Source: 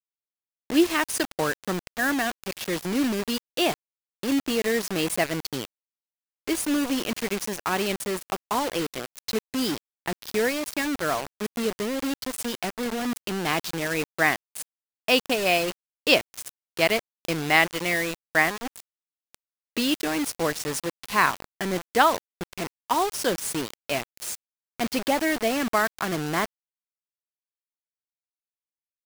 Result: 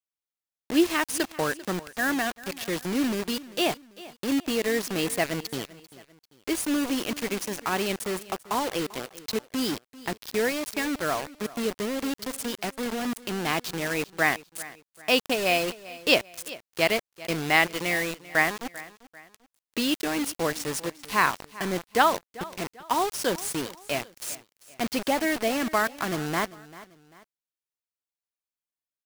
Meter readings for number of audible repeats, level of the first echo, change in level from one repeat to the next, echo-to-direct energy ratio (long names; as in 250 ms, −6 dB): 2, −18.5 dB, −8.0 dB, −18.0 dB